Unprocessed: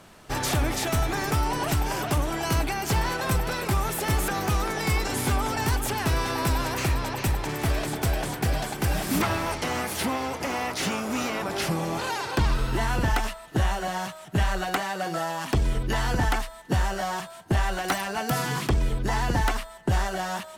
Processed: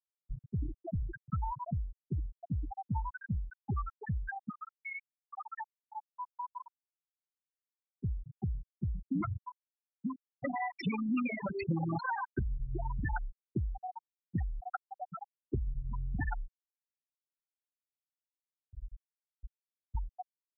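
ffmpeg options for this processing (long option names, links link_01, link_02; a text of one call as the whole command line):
ffmpeg -i in.wav -filter_complex "[0:a]asettb=1/sr,asplit=3[link_01][link_02][link_03];[link_01]atrim=end=4.494[link_04];[link_02]atrim=start=4.49:end=7.99,asetpts=PTS-STARTPTS,afade=type=in:duration=0.004:curve=qsin,afade=type=out:start_time=3.496:duration=0.004:curve=qsin,highpass=400,lowpass=3300[link_05];[link_03]atrim=start=7.986[link_06];[link_04][link_05]acrossfade=duration=0.004:curve1=hsin:curve2=qsin[link_07];[link_07][link_06]acrossfade=duration=0.004:curve1=qsin:curve2=hsin,asettb=1/sr,asplit=3[link_08][link_09][link_10];[link_08]atrim=end=10.414[link_11];[link_09]atrim=start=10.41:end=12.26,asetpts=PTS-STARTPTS,afade=type=in:duration=0.004:curve=qsin,afade=type=out:start_time=1.846:duration=0.004:curve=qsin,acontrast=43[link_12];[link_10]atrim=start=12.256[link_13];[link_11][link_12]acrossfade=duration=0.004:curve1=hsin:curve2=qsin[link_14];[link_14][link_13]acrossfade=duration=0.004:curve1=qsin:curve2=hsin,asettb=1/sr,asplit=3[link_15][link_16][link_17];[link_15]atrim=end=16.624[link_18];[link_16]atrim=start=16.62:end=19.95,asetpts=PTS-STARTPTS,afade=type=in:duration=0.004:curve=qsin,afade=type=out:start_time=3.326:duration=0.004:curve=qsin,acompressor=threshold=-34dB:ratio=12:attack=3.2:release=140:knee=1:detection=peak[link_19];[link_17]atrim=start=19.946[link_20];[link_18][link_19]acrossfade=duration=0.004:curve1=hsin:curve2=qsin[link_21];[link_21][link_20]acrossfade=duration=0.004:curve1=qsin:curve2=hsin,equalizer=frequency=450:width=0.42:gain=-5.5,afftfilt=real='re*gte(hypot(re,im),0.2)':imag='im*gte(hypot(re,im),0.2)':win_size=1024:overlap=0.75,acrossover=split=250|1700[link_22][link_23][link_24];[link_22]acompressor=threshold=-34dB:ratio=4[link_25];[link_23]acompressor=threshold=-33dB:ratio=4[link_26];[link_24]acompressor=threshold=-43dB:ratio=4[link_27];[link_25][link_26][link_27]amix=inputs=3:normalize=0" out.wav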